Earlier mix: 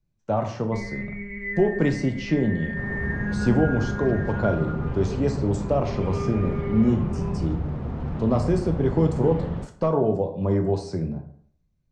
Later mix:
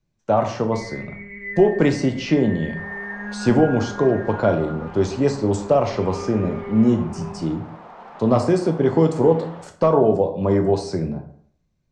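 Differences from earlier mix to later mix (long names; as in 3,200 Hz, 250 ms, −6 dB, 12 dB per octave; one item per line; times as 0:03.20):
speech +7.5 dB
second sound: add high-pass with resonance 790 Hz, resonance Q 1.7
master: add low-shelf EQ 180 Hz −9.5 dB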